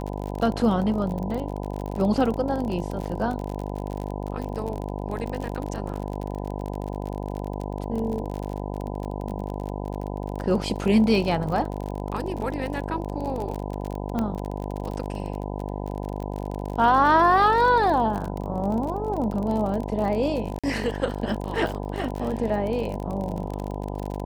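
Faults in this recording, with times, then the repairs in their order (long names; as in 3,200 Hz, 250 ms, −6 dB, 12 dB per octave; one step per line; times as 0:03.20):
mains buzz 50 Hz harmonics 20 −31 dBFS
surface crackle 42 per second −29 dBFS
0:14.19: click −15 dBFS
0:20.59–0:20.64: drop-out 46 ms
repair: click removal
hum removal 50 Hz, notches 20
repair the gap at 0:20.59, 46 ms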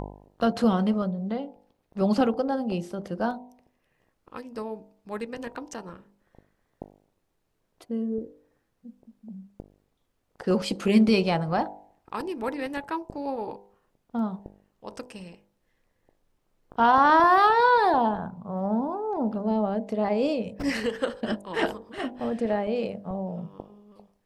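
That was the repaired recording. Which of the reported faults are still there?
0:14.19: click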